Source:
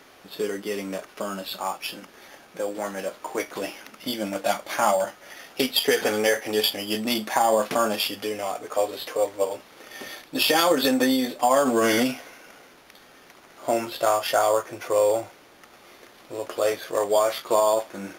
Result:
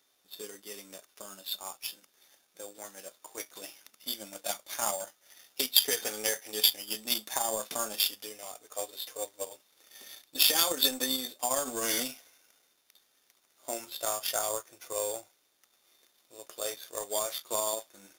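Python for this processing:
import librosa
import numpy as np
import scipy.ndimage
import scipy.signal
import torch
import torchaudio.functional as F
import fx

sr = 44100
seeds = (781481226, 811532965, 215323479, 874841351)

y = fx.bass_treble(x, sr, bass_db=-4, treble_db=15)
y = fx.small_body(y, sr, hz=(3600.0,), ring_ms=45, db=15)
y = fx.power_curve(y, sr, exponent=1.4)
y = F.gain(torch.from_numpy(y), -6.5).numpy()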